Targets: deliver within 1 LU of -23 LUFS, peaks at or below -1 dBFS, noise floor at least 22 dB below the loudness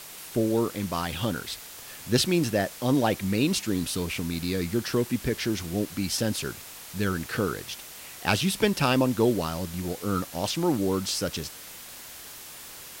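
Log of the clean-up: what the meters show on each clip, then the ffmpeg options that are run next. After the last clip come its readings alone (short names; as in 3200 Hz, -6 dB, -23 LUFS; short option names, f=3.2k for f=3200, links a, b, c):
noise floor -43 dBFS; noise floor target -50 dBFS; loudness -27.5 LUFS; peak -4.0 dBFS; loudness target -23.0 LUFS
-> -af "afftdn=nr=7:nf=-43"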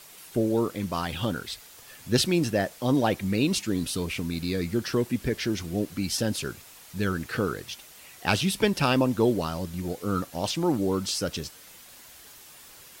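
noise floor -49 dBFS; noise floor target -50 dBFS
-> -af "afftdn=nr=6:nf=-49"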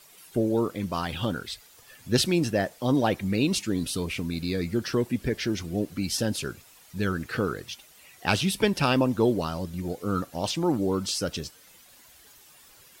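noise floor -54 dBFS; loudness -27.5 LUFS; peak -4.5 dBFS; loudness target -23.0 LUFS
-> -af "volume=4.5dB,alimiter=limit=-1dB:level=0:latency=1"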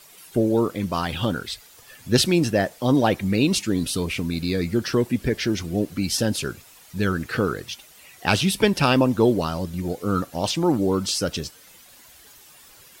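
loudness -23.0 LUFS; peak -1.0 dBFS; noise floor -50 dBFS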